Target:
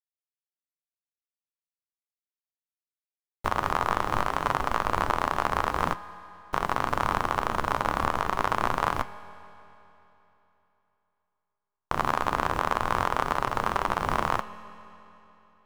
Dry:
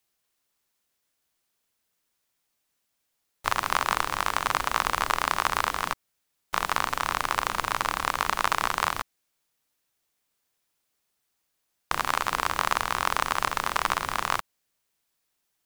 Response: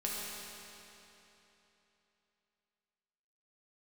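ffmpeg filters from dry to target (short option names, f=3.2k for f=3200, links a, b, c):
-filter_complex "[0:a]tiltshelf=f=1.3k:g=9.5,alimiter=limit=-13dB:level=0:latency=1:release=262,flanger=delay=6.7:depth=8.2:regen=75:speed=0.45:shape=triangular,aeval=exprs='sgn(val(0))*max(abs(val(0))-0.00376,0)':c=same,asplit=2[a][b];[1:a]atrim=start_sample=2205[c];[b][c]afir=irnorm=-1:irlink=0,volume=-16dB[d];[a][d]amix=inputs=2:normalize=0,volume=7.5dB"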